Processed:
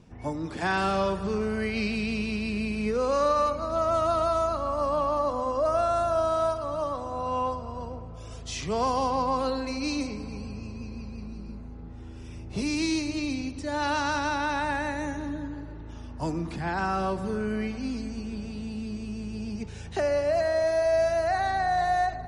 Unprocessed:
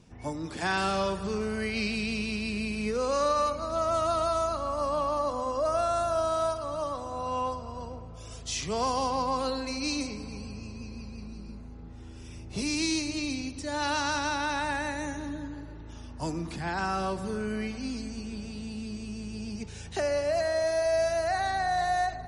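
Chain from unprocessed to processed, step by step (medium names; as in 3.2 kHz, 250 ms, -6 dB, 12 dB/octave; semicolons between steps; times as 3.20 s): treble shelf 3.4 kHz -9 dB; trim +3 dB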